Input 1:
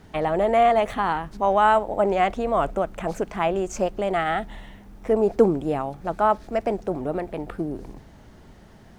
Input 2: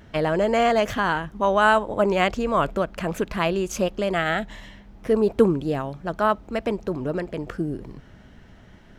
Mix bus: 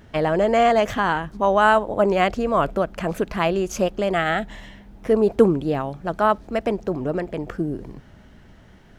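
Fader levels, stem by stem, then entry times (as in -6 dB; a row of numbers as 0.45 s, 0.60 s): -7.5 dB, -1.0 dB; 0.00 s, 0.00 s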